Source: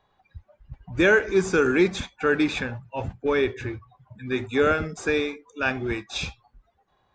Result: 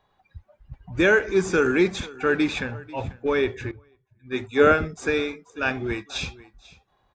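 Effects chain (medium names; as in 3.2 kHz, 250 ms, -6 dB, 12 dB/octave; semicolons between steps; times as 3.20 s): delay 491 ms -20.5 dB; 3.71–5.02 s: three bands expanded up and down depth 100%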